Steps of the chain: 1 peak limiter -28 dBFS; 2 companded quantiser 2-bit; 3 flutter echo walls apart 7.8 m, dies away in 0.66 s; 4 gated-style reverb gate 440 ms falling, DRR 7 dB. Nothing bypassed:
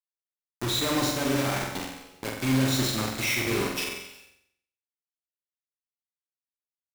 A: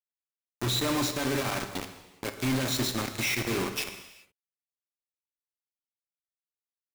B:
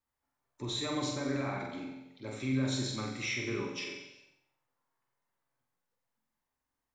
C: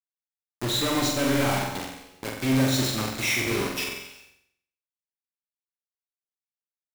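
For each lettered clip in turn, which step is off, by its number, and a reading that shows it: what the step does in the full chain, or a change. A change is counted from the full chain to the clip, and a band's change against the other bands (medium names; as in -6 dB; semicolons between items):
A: 3, crest factor change -2.0 dB; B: 2, distortion -4 dB; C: 1, mean gain reduction 2.0 dB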